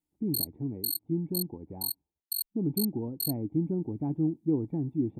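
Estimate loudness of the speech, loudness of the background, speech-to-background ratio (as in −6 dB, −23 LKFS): −32.5 LKFS, −34.5 LKFS, 2.0 dB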